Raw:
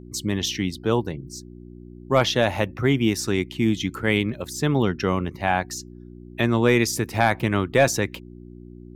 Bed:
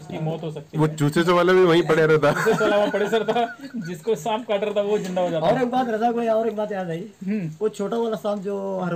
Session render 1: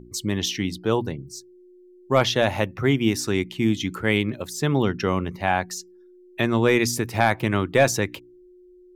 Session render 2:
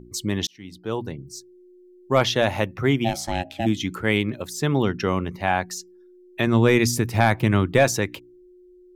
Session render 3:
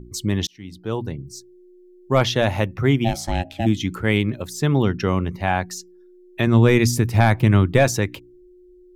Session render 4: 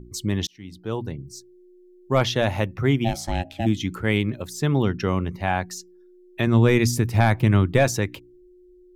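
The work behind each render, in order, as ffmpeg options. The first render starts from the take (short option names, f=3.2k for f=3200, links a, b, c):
-af "bandreject=f=60:t=h:w=4,bandreject=f=120:t=h:w=4,bandreject=f=180:t=h:w=4,bandreject=f=240:t=h:w=4,bandreject=f=300:t=h:w=4"
-filter_complex "[0:a]asplit=3[a][b][c];[a]afade=t=out:st=3.04:d=0.02[d];[b]aeval=exprs='val(0)*sin(2*PI*450*n/s)':c=same,afade=t=in:st=3.04:d=0.02,afade=t=out:st=3.65:d=0.02[e];[c]afade=t=in:st=3.65:d=0.02[f];[d][e][f]amix=inputs=3:normalize=0,asettb=1/sr,asplit=3[g][h][i];[g]atrim=end=6.474[j];[h]atrim=start=6.47:end=7.79,asetpts=PTS-STARTPTS,afade=t=in:d=0.004:c=qsin,afade=t=out:st=1.316:d=0.004:c=qsin,bass=f=250:g=6,treble=f=4k:g=1[k];[i]atrim=start=7.786[l];[j][k]acrossfade=d=0.004:c1=hsin:c2=qsin[m];[m][l]acrossfade=d=0.004:c1=qsin:c2=hsin,asplit=2[n][o];[n]atrim=end=0.47,asetpts=PTS-STARTPTS,afade=t=out:st=0.466:d=0.004:c=hsin[p];[o]atrim=start=0.47,asetpts=PTS-STARTPTS,afade=t=in:d=0.88[q];[p][q]concat=n=2:v=0:a=1"
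-af "lowshelf=f=140:g=9.5"
-af "volume=-2.5dB"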